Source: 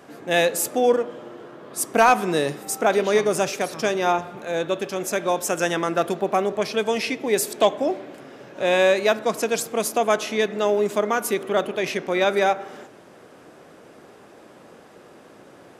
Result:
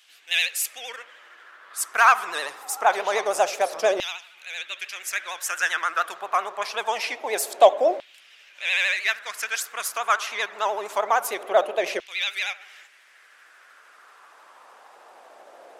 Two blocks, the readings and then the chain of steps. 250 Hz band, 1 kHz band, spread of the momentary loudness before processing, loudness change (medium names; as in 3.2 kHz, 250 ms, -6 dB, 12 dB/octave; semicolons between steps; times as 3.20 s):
-16.5 dB, 0.0 dB, 9 LU, -2.0 dB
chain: vibrato 13 Hz 95 cents; LFO high-pass saw down 0.25 Hz 550–3100 Hz; trim -2 dB